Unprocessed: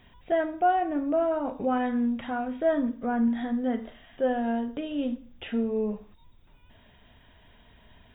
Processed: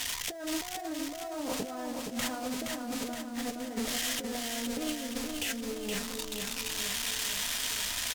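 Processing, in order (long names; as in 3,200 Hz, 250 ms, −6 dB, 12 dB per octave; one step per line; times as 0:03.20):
spike at every zero crossing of −21 dBFS
bad sample-rate conversion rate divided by 2×, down filtered, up hold
on a send at −8 dB: convolution reverb, pre-delay 3 ms
on the sum: compressor whose output falls as the input rises −34 dBFS, ratio −1
repeating echo 470 ms, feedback 56%, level −4.5 dB
highs frequency-modulated by the lows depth 0.14 ms
level −3 dB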